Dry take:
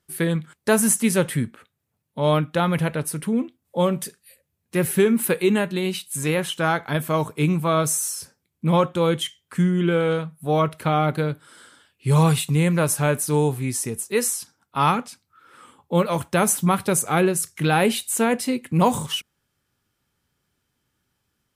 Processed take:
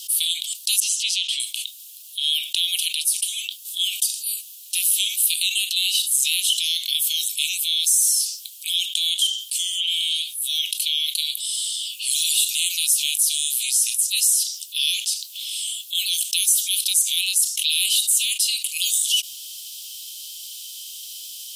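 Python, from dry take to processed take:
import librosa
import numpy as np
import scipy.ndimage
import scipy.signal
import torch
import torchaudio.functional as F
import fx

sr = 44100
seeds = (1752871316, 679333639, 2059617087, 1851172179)

y = fx.air_absorb(x, sr, metres=160.0, at=(0.8, 1.4))
y = scipy.signal.sosfilt(scipy.signal.butter(12, 2900.0, 'highpass', fs=sr, output='sos'), y)
y = fx.env_flatten(y, sr, amount_pct=70)
y = y * librosa.db_to_amplitude(3.0)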